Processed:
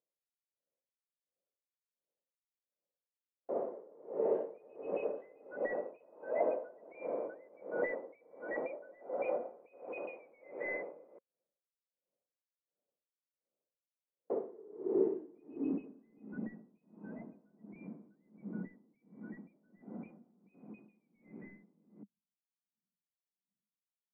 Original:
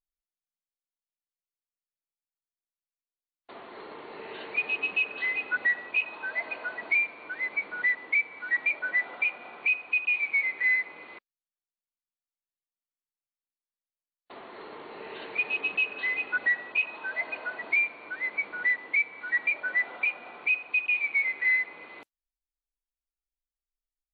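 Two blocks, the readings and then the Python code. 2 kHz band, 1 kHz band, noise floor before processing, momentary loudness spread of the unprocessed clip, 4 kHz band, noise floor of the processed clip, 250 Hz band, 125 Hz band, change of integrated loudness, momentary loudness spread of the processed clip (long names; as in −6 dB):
−25.5 dB, −6.0 dB, below −85 dBFS, 17 LU, below −35 dB, below −85 dBFS, +8.5 dB, can't be measured, −13.0 dB, 21 LU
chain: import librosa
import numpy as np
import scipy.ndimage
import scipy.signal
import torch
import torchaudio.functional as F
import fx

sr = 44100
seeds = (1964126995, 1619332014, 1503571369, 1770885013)

y = scipy.signal.sosfilt(scipy.signal.butter(4, 140.0, 'highpass', fs=sr, output='sos'), x)
y = 10.0 ** (-22.0 / 20.0) * np.tanh(y / 10.0 ** (-22.0 / 20.0))
y = fx.filter_sweep_lowpass(y, sr, from_hz=540.0, to_hz=200.0, start_s=14.03, end_s=16.44, q=5.6)
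y = fx.rider(y, sr, range_db=3, speed_s=2.0)
y = scipy.signal.sosfilt(scipy.signal.butter(2, 2300.0, 'lowpass', fs=sr, output='sos'), y)
y = y * 10.0 ** (-27 * (0.5 - 0.5 * np.cos(2.0 * np.pi * 1.4 * np.arange(len(y)) / sr)) / 20.0)
y = y * 10.0 ** (7.5 / 20.0)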